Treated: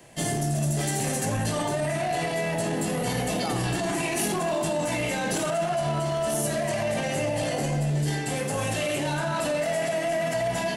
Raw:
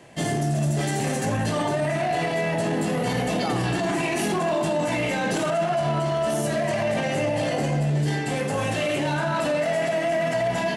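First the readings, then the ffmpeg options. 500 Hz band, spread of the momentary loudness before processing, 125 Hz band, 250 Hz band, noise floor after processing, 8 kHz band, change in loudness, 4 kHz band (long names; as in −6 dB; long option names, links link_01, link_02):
−3.0 dB, 1 LU, −2.5 dB, −3.5 dB, −29 dBFS, +4.0 dB, −2.5 dB, −1.0 dB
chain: -filter_complex "[0:a]aemphasis=mode=production:type=50kf,acrossover=split=280|800[link_01][link_02][link_03];[link_02]crystalizer=i=9:c=0[link_04];[link_01][link_04][link_03]amix=inputs=3:normalize=0,lowshelf=frequency=65:gain=11.5,volume=-4.5dB"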